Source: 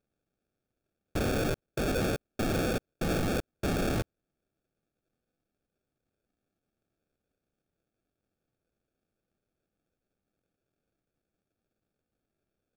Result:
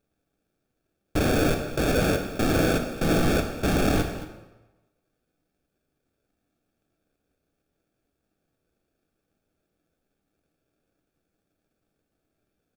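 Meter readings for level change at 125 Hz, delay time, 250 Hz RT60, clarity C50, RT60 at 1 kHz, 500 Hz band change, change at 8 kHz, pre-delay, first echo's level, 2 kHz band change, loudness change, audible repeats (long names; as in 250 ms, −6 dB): +6.5 dB, 223 ms, 1.0 s, 6.5 dB, 1.1 s, +7.0 dB, +6.5 dB, 3 ms, −15.0 dB, +7.5 dB, +7.0 dB, 1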